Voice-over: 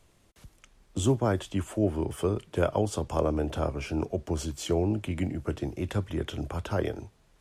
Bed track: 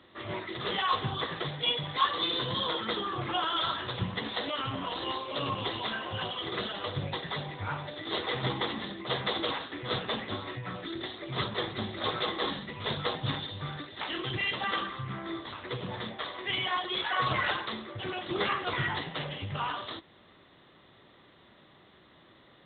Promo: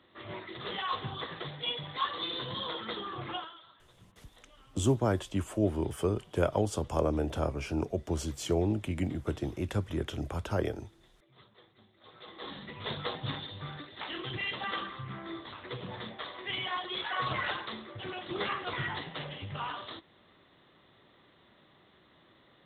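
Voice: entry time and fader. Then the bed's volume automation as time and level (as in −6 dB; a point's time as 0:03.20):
3.80 s, −2.0 dB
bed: 0:03.35 −5.5 dB
0:03.63 −27.5 dB
0:12.00 −27.5 dB
0:12.65 −4 dB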